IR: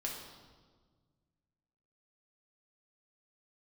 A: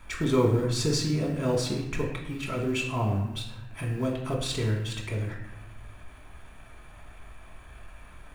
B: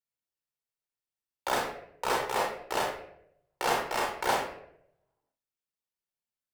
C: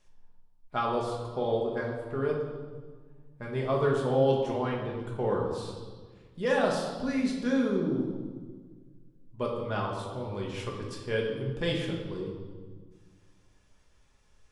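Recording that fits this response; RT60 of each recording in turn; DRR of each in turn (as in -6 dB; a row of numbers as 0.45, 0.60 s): C; 0.95, 0.75, 1.5 s; -1.0, -2.5, -2.5 dB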